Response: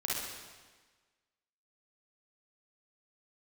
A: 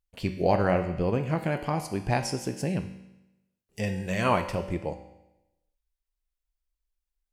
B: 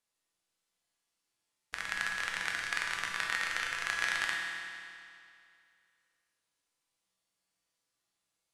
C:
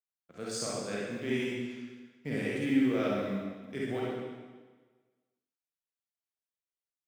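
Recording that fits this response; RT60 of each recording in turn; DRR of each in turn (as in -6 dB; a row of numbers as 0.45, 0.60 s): C; 0.95, 2.4, 1.4 s; 6.0, -1.5, -6.0 dB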